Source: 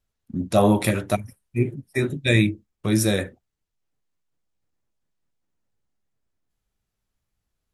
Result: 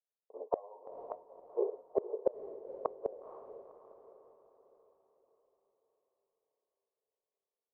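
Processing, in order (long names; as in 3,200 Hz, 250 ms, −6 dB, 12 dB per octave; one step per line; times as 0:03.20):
low-pass that shuts in the quiet parts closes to 590 Hz, open at −17 dBFS
noise gate with hold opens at −43 dBFS
Chebyshev band-pass filter 430–1,100 Hz, order 5
downward compressor 10 to 1, threshold −24 dBFS, peak gain reduction 10.5 dB
gate with flip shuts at −28 dBFS, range −33 dB
feedback delay with all-pass diffusion 491 ms, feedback 47%, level −11.5 dB
level +11.5 dB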